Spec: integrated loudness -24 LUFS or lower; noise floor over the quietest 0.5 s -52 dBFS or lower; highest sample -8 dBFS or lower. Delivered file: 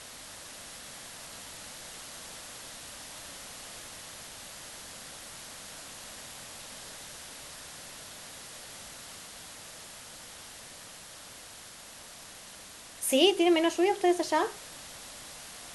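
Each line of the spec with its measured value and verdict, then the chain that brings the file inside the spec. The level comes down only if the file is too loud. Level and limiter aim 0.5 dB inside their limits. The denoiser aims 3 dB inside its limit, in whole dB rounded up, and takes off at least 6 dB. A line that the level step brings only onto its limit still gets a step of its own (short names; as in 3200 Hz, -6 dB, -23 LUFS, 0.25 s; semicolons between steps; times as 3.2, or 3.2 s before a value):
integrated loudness -34.0 LUFS: OK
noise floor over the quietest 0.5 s -48 dBFS: fail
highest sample -9.5 dBFS: OK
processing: denoiser 7 dB, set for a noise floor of -48 dBFS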